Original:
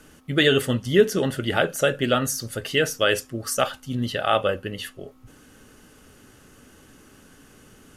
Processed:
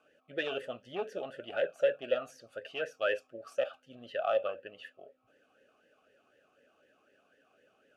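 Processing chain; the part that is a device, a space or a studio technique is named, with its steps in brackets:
talk box (tube saturation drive 11 dB, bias 0.5; formant filter swept between two vowels a-e 4 Hz)

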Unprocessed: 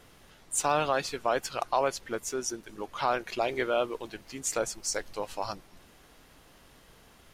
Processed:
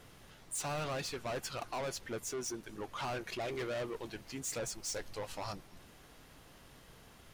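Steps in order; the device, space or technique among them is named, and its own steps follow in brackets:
open-reel tape (soft clipping −33.5 dBFS, distortion −4 dB; parametric band 120 Hz +4.5 dB 1.02 octaves; white noise bed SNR 46 dB)
level −1.5 dB

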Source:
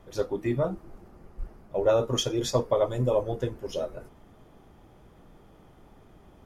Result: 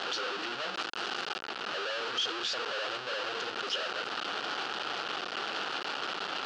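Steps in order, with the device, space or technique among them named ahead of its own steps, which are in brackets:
home computer beeper (sign of each sample alone; loudspeaker in its box 610–4,900 Hz, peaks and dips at 620 Hz −6 dB, 980 Hz −5 dB, 1,400 Hz +7 dB, 2,100 Hz −7 dB, 2,900 Hz +7 dB, 4,500 Hz +4 dB)
0:00.74–0:01.42: high-shelf EQ 4,300 Hz +6.5 dB

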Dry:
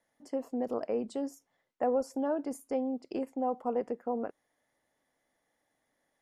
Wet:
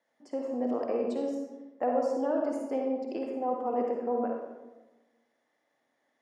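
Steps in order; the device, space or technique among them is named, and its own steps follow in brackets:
supermarket ceiling speaker (band-pass filter 220–5,900 Hz; convolution reverb RT60 1.2 s, pre-delay 46 ms, DRR −0.5 dB)

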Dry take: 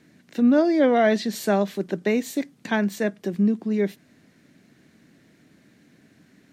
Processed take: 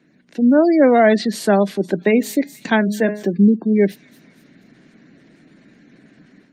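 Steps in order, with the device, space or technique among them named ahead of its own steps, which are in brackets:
0:02.08–0:03.23: hum removal 209 Hz, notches 22
delay with a high-pass on its return 239 ms, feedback 54%, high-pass 3,700 Hz, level −11.5 dB
dynamic equaliser 4,700 Hz, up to +3 dB, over −59 dBFS, Q 5.6
noise-suppressed video call (high-pass filter 130 Hz 24 dB per octave; gate on every frequency bin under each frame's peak −30 dB strong; automatic gain control gain up to 8.5 dB; Opus 32 kbit/s 48,000 Hz)

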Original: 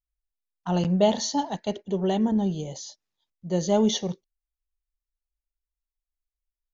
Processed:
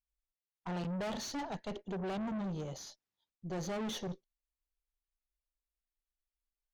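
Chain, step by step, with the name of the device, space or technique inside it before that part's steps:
tube preamp driven hard (tube saturation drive 33 dB, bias 0.5; high-shelf EQ 5,700 Hz −8.5 dB)
level −2.5 dB

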